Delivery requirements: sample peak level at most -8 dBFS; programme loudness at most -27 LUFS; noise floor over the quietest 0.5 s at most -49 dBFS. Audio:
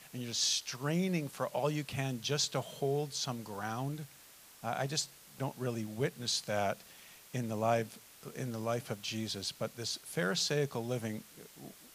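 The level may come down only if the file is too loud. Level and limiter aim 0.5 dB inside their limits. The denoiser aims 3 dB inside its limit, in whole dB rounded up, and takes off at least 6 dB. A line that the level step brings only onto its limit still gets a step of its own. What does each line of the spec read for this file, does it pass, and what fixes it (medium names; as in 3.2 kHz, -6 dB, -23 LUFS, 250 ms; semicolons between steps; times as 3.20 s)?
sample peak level -17.5 dBFS: pass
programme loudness -35.5 LUFS: pass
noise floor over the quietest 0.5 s -57 dBFS: pass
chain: none needed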